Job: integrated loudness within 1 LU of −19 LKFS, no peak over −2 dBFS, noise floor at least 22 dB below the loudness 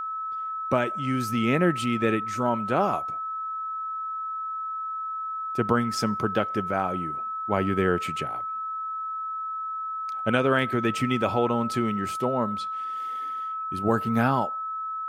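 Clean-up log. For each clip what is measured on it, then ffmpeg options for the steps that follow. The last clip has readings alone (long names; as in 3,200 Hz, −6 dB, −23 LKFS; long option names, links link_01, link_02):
interfering tone 1,300 Hz; level of the tone −29 dBFS; integrated loudness −27.0 LKFS; sample peak −8.0 dBFS; target loudness −19.0 LKFS
→ -af "bandreject=frequency=1300:width=30"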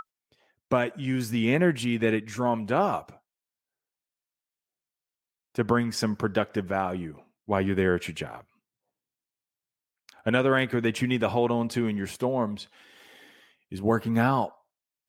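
interfering tone none found; integrated loudness −27.0 LKFS; sample peak −9.0 dBFS; target loudness −19.0 LKFS
→ -af "volume=8dB,alimiter=limit=-2dB:level=0:latency=1"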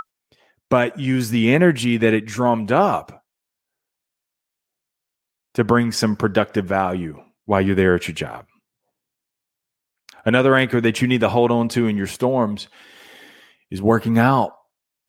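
integrated loudness −19.0 LKFS; sample peak −2.0 dBFS; background noise floor −83 dBFS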